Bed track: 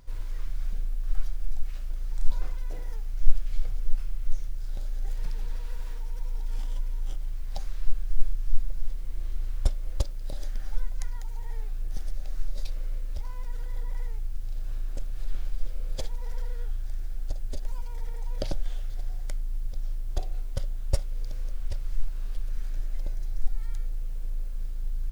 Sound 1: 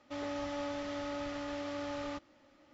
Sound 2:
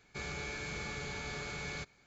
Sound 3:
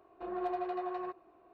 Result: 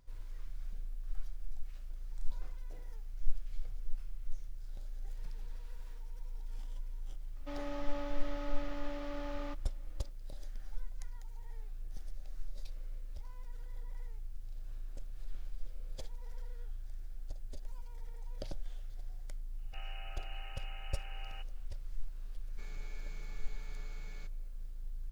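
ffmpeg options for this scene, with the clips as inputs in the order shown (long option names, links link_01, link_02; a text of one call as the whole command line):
ffmpeg -i bed.wav -i cue0.wav -i cue1.wav -filter_complex "[2:a]asplit=2[link_01][link_02];[0:a]volume=-12dB[link_03];[1:a]highshelf=frequency=5200:gain=-10[link_04];[link_01]lowpass=frequency=2600:width_type=q:width=0.5098,lowpass=frequency=2600:width_type=q:width=0.6013,lowpass=frequency=2600:width_type=q:width=0.9,lowpass=frequency=2600:width_type=q:width=2.563,afreqshift=-3000[link_05];[link_04]atrim=end=2.73,asetpts=PTS-STARTPTS,volume=-3.5dB,afade=type=in:duration=0.004:curve=hsin,afade=type=out:start_time=2.726:duration=0.004:curve=hsin,adelay=7360[link_06];[link_05]atrim=end=2.06,asetpts=PTS-STARTPTS,volume=-10.5dB,afade=type=in:duration=0.004:curve=hsin,afade=type=out:start_time=2.056:duration=0.004:curve=hsin,adelay=19580[link_07];[link_02]atrim=end=2.06,asetpts=PTS-STARTPTS,volume=-16dB,afade=type=in:duration=0.004:curve=hsin,afade=type=out:start_time=2.056:duration=0.004:curve=hsin,adelay=22430[link_08];[link_03][link_06][link_07][link_08]amix=inputs=4:normalize=0" out.wav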